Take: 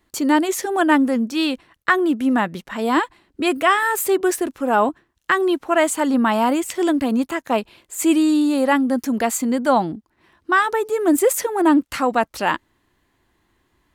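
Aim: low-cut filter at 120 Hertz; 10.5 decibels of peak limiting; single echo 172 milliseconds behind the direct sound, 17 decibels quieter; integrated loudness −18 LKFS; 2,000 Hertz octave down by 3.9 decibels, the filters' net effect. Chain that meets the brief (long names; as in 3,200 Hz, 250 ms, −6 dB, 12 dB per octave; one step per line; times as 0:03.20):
high-pass filter 120 Hz
parametric band 2,000 Hz −5 dB
brickwall limiter −15.5 dBFS
single-tap delay 172 ms −17 dB
level +6 dB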